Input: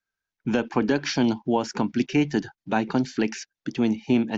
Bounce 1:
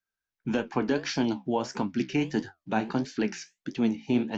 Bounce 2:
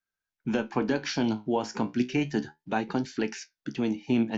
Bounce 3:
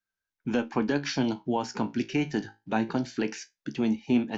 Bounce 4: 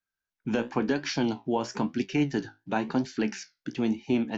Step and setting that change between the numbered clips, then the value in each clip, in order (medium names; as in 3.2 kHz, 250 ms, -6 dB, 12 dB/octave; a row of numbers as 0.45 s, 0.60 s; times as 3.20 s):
flange, rate: 1.6 Hz, 0.33 Hz, 0.21 Hz, 0.98 Hz